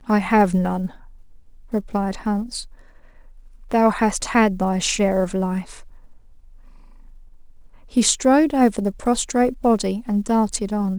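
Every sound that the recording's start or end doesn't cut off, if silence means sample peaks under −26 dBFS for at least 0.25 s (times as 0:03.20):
0:01.73–0:02.62
0:03.71–0:05.61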